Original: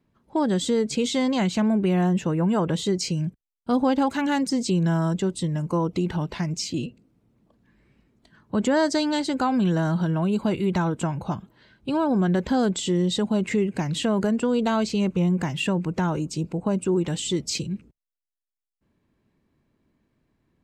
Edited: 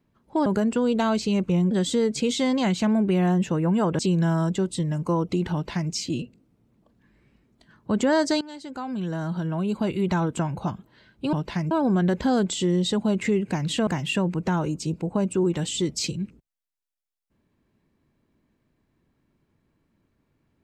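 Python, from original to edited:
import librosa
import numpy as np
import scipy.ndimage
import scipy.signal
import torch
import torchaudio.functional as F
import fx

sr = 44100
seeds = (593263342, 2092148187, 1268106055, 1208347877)

y = fx.edit(x, sr, fx.cut(start_s=2.74, length_s=1.89),
    fx.duplicate(start_s=6.17, length_s=0.38, to_s=11.97),
    fx.fade_in_from(start_s=9.05, length_s=1.79, floor_db=-18.5),
    fx.move(start_s=14.13, length_s=1.25, to_s=0.46), tone=tone)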